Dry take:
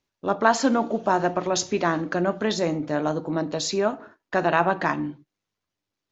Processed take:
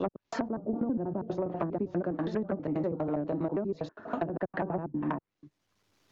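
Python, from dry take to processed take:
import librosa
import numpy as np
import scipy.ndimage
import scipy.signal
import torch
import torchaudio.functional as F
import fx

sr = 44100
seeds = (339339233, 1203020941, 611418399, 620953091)

y = fx.block_reorder(x, sr, ms=81.0, group=4)
y = fx.env_lowpass_down(y, sr, base_hz=300.0, full_db=-18.5)
y = 10.0 ** (-12.0 / 20.0) * np.tanh(y / 10.0 ** (-12.0 / 20.0))
y = fx.band_squash(y, sr, depth_pct=70)
y = y * 10.0 ** (-4.5 / 20.0)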